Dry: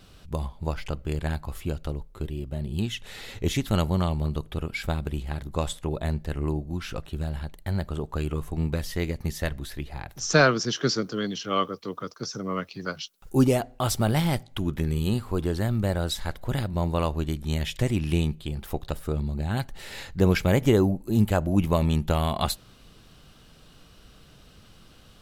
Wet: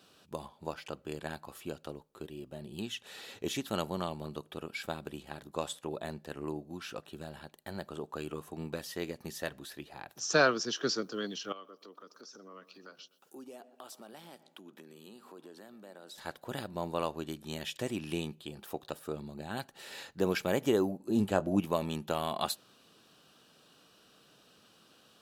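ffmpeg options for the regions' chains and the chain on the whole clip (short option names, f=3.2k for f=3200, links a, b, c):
-filter_complex "[0:a]asettb=1/sr,asplit=3[a][b][c];[a]atrim=end=11.524[d];[b]atrim=start=11.52:end=16.18,asetpts=PTS-STARTPTS,afade=t=in:d=0.004:c=qsin,afade=t=out:st=4.656:d=0.004:c=qsin,highpass=f=190:w=0.5412,highpass=f=190:w=1.3066,acompressor=threshold=-45dB:ratio=3:attack=3.2:release=140:knee=1:detection=peak,asplit=2[e][f];[f]adelay=123,lowpass=f=2.2k:p=1,volume=-16.5dB,asplit=2[g][h];[h]adelay=123,lowpass=f=2.2k:p=1,volume=0.46,asplit=2[i][j];[j]adelay=123,lowpass=f=2.2k:p=1,volume=0.46,asplit=2[k][l];[l]adelay=123,lowpass=f=2.2k:p=1,volume=0.46[m];[e][g][i][k][m]amix=inputs=5:normalize=0,atrim=end_sample=205506[n];[c]atrim=start=16.176[o];[d][n]acrossfade=d=0.004:c1=hsin:c2=qsin[p];[p][o]acrossfade=d=0.004:c1=qsin:c2=hsin,asettb=1/sr,asplit=3[q][r][s];[q]atrim=end=20.994[t];[r]atrim=start=20.99:end=21.6,asetpts=PTS-STARTPTS,afade=t=in:d=0.004:c=qsin,afade=t=out:st=0.606:d=0.004:c=qsin,lowpass=9.9k,lowshelf=f=490:g=5.5,asplit=2[u][v];[v]adelay=21,volume=-12dB[w];[u][w]amix=inputs=2:normalize=0,atrim=end_sample=26901[x];[s]atrim=start=21.596[y];[t][x]acrossfade=d=0.004:c1=hsin:c2=qsin[z];[z][y]acrossfade=d=0.004:c1=qsin:c2=hsin,highpass=260,bandreject=f=2.1k:w=8.1,volume=-5.5dB"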